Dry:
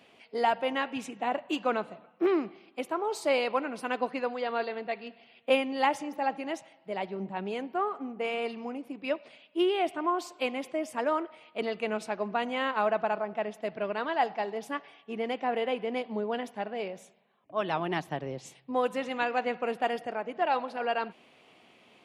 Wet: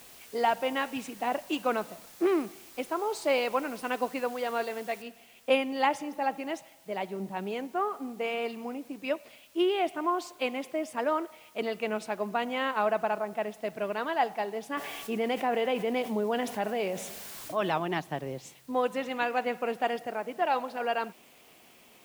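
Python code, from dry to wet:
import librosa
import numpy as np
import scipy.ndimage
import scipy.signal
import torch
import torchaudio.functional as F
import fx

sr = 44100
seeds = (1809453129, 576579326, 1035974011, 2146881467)

y = fx.noise_floor_step(x, sr, seeds[0], at_s=5.02, before_db=-52, after_db=-61, tilt_db=0.0)
y = fx.env_flatten(y, sr, amount_pct=50, at=(14.77, 17.78))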